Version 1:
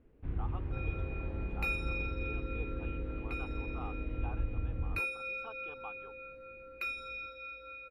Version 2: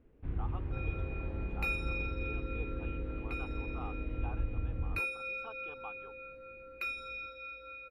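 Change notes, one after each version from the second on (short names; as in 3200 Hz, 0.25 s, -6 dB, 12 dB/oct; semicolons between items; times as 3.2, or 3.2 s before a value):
none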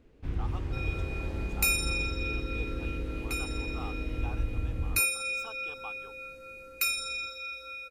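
first sound +3.5 dB; master: remove air absorption 500 m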